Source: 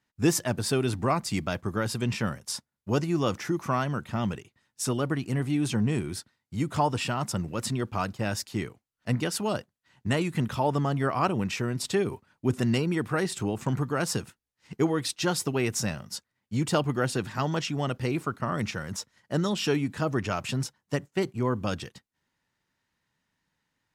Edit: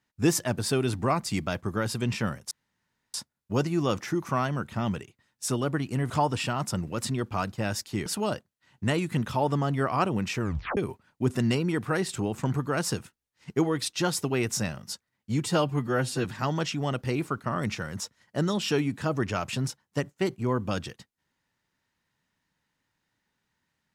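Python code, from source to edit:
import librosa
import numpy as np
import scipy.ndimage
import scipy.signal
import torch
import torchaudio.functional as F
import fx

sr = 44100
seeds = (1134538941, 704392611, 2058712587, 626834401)

y = fx.edit(x, sr, fx.insert_room_tone(at_s=2.51, length_s=0.63),
    fx.cut(start_s=5.47, length_s=1.24),
    fx.cut(start_s=8.67, length_s=0.62),
    fx.tape_stop(start_s=11.64, length_s=0.36),
    fx.stretch_span(start_s=16.67, length_s=0.54, factor=1.5), tone=tone)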